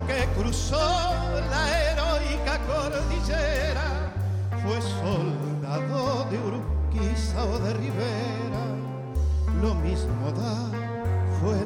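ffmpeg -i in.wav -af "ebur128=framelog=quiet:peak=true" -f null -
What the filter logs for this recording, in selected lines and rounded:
Integrated loudness:
  I:         -26.9 LUFS
  Threshold: -36.9 LUFS
Loudness range:
  LRA:         2.4 LU
  Threshold: -47.1 LUFS
  LRA low:   -27.9 LUFS
  LRA high:  -25.5 LUFS
True peak:
  Peak:      -11.4 dBFS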